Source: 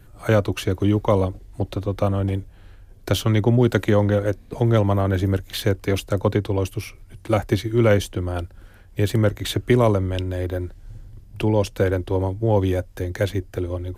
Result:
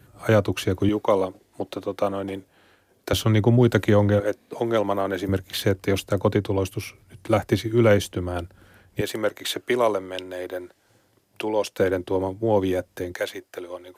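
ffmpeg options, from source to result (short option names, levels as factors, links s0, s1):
-af "asetnsamples=n=441:p=0,asendcmd='0.89 highpass f 290;3.13 highpass f 76;4.2 highpass f 310;5.29 highpass f 110;9.01 highpass f 430;11.79 highpass f 180;13.14 highpass f 570',highpass=100"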